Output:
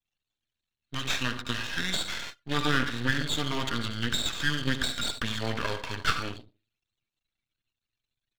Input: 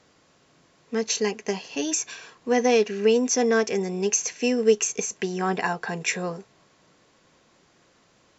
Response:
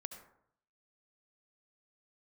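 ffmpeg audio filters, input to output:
-filter_complex "[0:a]acrossover=split=2600[link_01][link_02];[link_02]acompressor=threshold=-43dB:ratio=4:attack=1:release=60[link_03];[link_01][link_03]amix=inputs=2:normalize=0,aexciter=amount=8.2:drive=6.6:freq=2200,aecho=1:1:5.5:0.36[link_04];[1:a]atrim=start_sample=2205,asetrate=52920,aresample=44100[link_05];[link_04][link_05]afir=irnorm=-1:irlink=0,anlmdn=1.58,asetrate=26222,aresample=44100,atempo=1.68179,aeval=exprs='max(val(0),0)':channel_layout=same"

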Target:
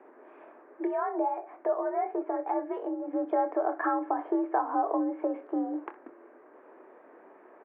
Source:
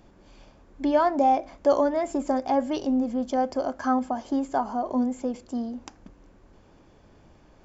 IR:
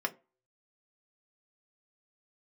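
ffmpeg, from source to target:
-filter_complex "[0:a]acompressor=threshold=-29dB:ratio=5,asettb=1/sr,asplit=3[link_01][link_02][link_03];[link_01]atrim=end=0.834[link_04];[link_02]atrim=start=0.83:end=3.13,asetpts=PTS-STARTPTS,afade=type=in:duration=0.004:curve=qsin,afade=type=out:start_time=2.296:duration=0.004:curve=qsin,flanger=delay=3.3:depth=7.8:regen=49:speed=1.3:shape=triangular[link_05];[link_03]atrim=start=3.126[link_06];[link_04][link_05]acrossfade=duration=0.004:curve1=hsin:curve2=qsin[link_07];[link_07][link_06]acrossfade=duration=0.004:curve1=qsin:curve2=hsin,aecho=1:1:25|63:0.316|0.141,highpass=frequency=260:width_type=q:width=0.5412,highpass=frequency=260:width_type=q:width=1.307,lowpass=frequency=2000:width_type=q:width=0.5176,lowpass=frequency=2000:width_type=q:width=0.7071,lowpass=frequency=2000:width_type=q:width=1.932,afreqshift=58,volume=5dB"

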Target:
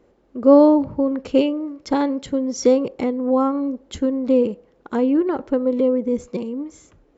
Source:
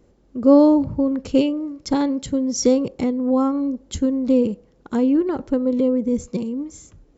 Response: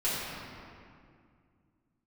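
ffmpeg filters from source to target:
-af "bass=frequency=250:gain=-11,treble=frequency=4000:gain=-11,volume=3.5dB"

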